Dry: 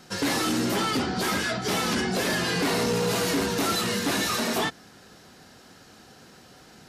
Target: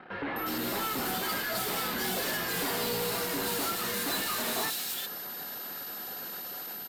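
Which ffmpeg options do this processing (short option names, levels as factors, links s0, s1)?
-filter_complex "[0:a]asplit=2[s0][s1];[s1]highpass=f=720:p=1,volume=22.4,asoftclip=type=tanh:threshold=0.126[s2];[s0][s2]amix=inputs=2:normalize=0,lowpass=f=7100:p=1,volume=0.501,equalizer=f=5900:t=o:w=0.67:g=-9,acrossover=split=4100[s3][s4];[s4]dynaudnorm=f=260:g=5:m=2.11[s5];[s3][s5]amix=inputs=2:normalize=0,aeval=exprs='val(0)+0.0355*sin(2*PI*13000*n/s)':c=same,anlmdn=15.8,acrossover=split=2600[s6][s7];[s7]adelay=360[s8];[s6][s8]amix=inputs=2:normalize=0,volume=0.355"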